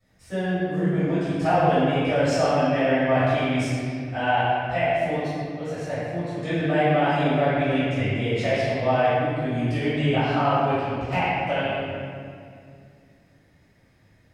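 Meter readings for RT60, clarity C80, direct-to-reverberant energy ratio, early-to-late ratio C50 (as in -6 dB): 2.2 s, -2.5 dB, -19.0 dB, -5.0 dB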